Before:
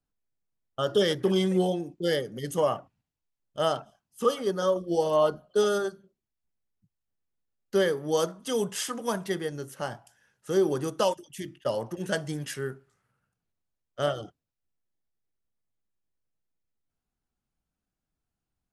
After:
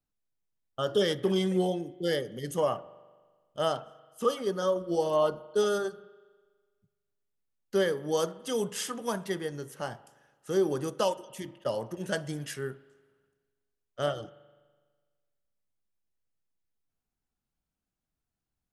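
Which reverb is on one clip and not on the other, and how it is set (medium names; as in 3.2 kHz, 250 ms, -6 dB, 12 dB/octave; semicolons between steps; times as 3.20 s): spring tank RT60 1.5 s, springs 41 ms, chirp 35 ms, DRR 19 dB; trim -2.5 dB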